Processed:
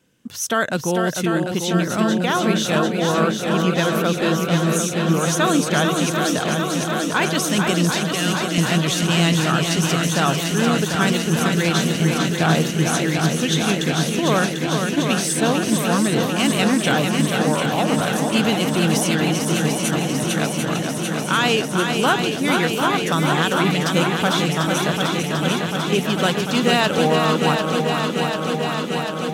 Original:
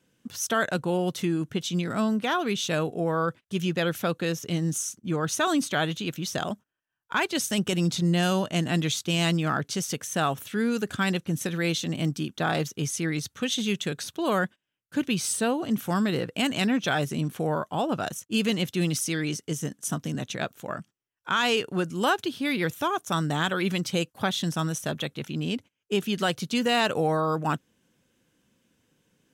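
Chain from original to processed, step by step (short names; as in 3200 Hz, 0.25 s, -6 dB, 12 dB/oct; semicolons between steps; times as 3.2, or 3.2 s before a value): 7.95–8.58 HPF 1300 Hz 12 dB/oct; swung echo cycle 0.744 s, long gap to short 1.5:1, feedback 78%, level -5.5 dB; gain +5 dB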